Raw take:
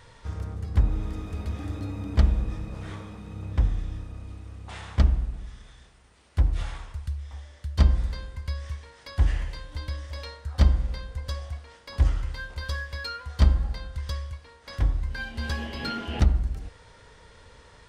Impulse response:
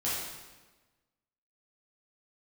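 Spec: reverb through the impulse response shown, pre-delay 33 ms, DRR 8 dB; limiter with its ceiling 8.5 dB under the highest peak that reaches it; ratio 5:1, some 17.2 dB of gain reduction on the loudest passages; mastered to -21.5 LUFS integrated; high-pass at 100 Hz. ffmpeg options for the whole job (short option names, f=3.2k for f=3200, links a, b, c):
-filter_complex "[0:a]highpass=100,acompressor=threshold=-40dB:ratio=5,alimiter=level_in=12dB:limit=-24dB:level=0:latency=1,volume=-12dB,asplit=2[a][b];[1:a]atrim=start_sample=2205,adelay=33[c];[b][c]afir=irnorm=-1:irlink=0,volume=-15dB[d];[a][d]amix=inputs=2:normalize=0,volume=24dB"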